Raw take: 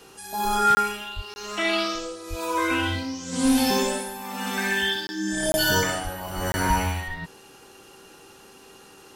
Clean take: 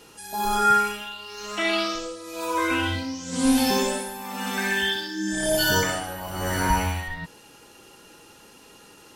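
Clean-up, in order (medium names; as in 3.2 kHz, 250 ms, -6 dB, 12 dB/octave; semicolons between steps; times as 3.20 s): clip repair -13 dBFS; de-hum 386.9 Hz, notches 4; de-plosive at 1.15/2.29/6.03/6.35 s; interpolate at 0.75/1.34/5.07/5.52/6.52 s, 20 ms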